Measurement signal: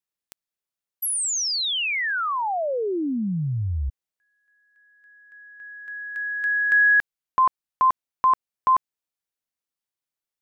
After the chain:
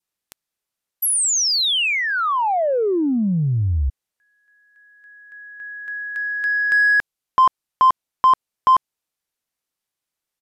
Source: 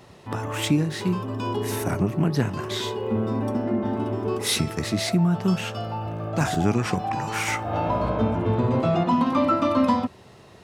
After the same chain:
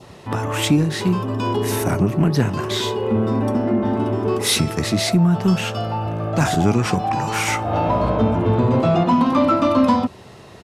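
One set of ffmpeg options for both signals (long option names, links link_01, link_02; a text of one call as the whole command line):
ffmpeg -i in.wav -filter_complex "[0:a]adynamicequalizer=threshold=0.01:dfrequency=1800:dqfactor=2:tfrequency=1800:tqfactor=2:attack=5:release=100:ratio=0.375:range=2.5:mode=cutabove:tftype=bell,asplit=2[link_01][link_02];[link_02]asoftclip=type=tanh:threshold=-23.5dB,volume=-5dB[link_03];[link_01][link_03]amix=inputs=2:normalize=0,aresample=32000,aresample=44100,volume=3dB" out.wav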